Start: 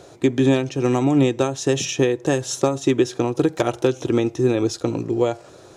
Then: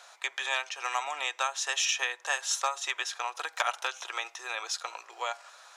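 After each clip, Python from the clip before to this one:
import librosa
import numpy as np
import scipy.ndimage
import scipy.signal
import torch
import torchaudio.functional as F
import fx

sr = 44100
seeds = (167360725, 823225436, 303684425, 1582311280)

y = scipy.signal.sosfilt(scipy.signal.bessel(6, 1500.0, 'highpass', norm='mag', fs=sr, output='sos'), x)
y = fx.high_shelf(y, sr, hz=2300.0, db=-11.5)
y = y * librosa.db_to_amplitude(8.0)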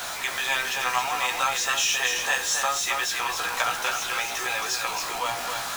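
y = x + 0.5 * 10.0 ** (-29.0 / 20.0) * np.sign(x)
y = fx.doubler(y, sr, ms=16.0, db=-4.5)
y = y + 10.0 ** (-5.0 / 20.0) * np.pad(y, (int(271 * sr / 1000.0), 0))[:len(y)]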